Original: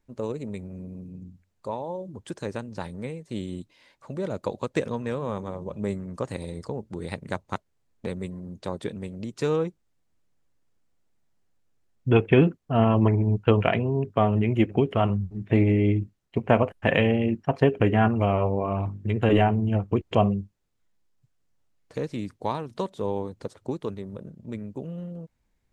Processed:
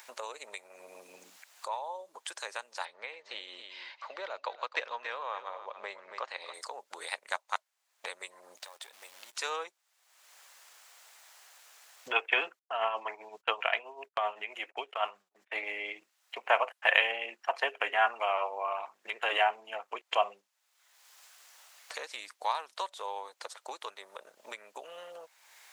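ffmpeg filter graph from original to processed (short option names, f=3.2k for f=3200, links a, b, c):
-filter_complex "[0:a]asettb=1/sr,asplit=3[a][b][c];[a]atrim=end=2.854[d];[b]atrim=start=2.85:end=6.54,asetpts=PTS-STARTPTS,afade=t=in:d=0.004:c=qsin,afade=t=out:st=3.686:d=0.004:c=qsin,lowpass=f=4.6k:w=0.5412,lowpass=f=4.6k:w=1.3066,bandreject=f=3.5k:w=29,aecho=1:1:278:0.224,atrim=end_sample=162729[e];[c]atrim=start=6.536[f];[d][e]acrossfade=d=0.004:c1=hsin:c2=qsin[g];[g][f]acrossfade=d=0.004:c1=qsin:c2=hsin,asettb=1/sr,asplit=3[h][i][j];[h]atrim=end=8.574[k];[i]atrim=start=8.57:end=9.35,asetpts=PTS-STARTPTS,afade=t=in:d=0.004:c=qsin,afade=t=out:st=0.776:d=0.004:c=qsin,aeval=exprs='if(lt(val(0),0),0.447*val(0),val(0))':c=same,acompressor=threshold=-49dB:ratio=8:attack=3.2:release=140:knee=1:detection=peak,acrusher=bits=5:mode=log:mix=0:aa=0.000001[l];[j]atrim=start=9.346[m];[k][l]acrossfade=d=0.004:c1=hsin:c2=qsin[n];[n][m]acrossfade=d=0.004:c1=qsin:c2=hsin,asettb=1/sr,asplit=3[o][p][q];[o]atrim=end=12.594[r];[p]atrim=start=12.59:end=15.63,asetpts=PTS-STARTPTS,afade=t=in:d=0.004:c=qsin,afade=t=out:st=3.036:d=0.004:c=qsin,agate=range=-27dB:threshold=-36dB:ratio=16:release=100:detection=peak,tremolo=f=7.7:d=0.58[s];[q]atrim=start=15.626[t];[r][s]acrossfade=d=0.004:c1=hsin:c2=qsin[u];[u][t]acrossfade=d=0.004:c1=qsin:c2=hsin,highpass=f=700:w=0.5412,highpass=f=700:w=1.3066,tiltshelf=f=940:g=-4,acompressor=mode=upward:threshold=-35dB:ratio=2.5"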